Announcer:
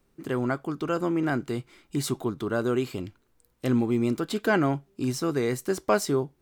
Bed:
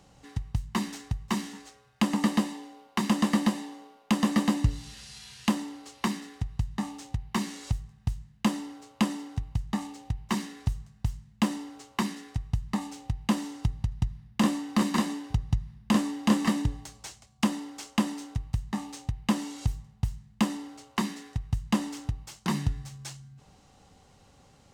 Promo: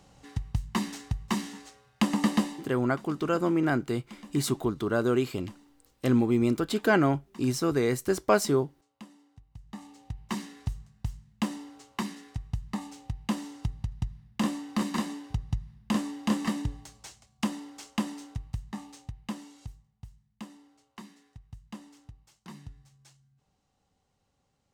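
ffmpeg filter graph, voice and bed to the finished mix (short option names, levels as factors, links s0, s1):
-filter_complex "[0:a]adelay=2400,volume=1.06[s0];[1:a]volume=7.94,afade=t=out:st=2.44:d=0.49:silence=0.0794328,afade=t=in:st=9.49:d=0.87:silence=0.125893,afade=t=out:st=18.26:d=1.58:silence=0.211349[s1];[s0][s1]amix=inputs=2:normalize=0"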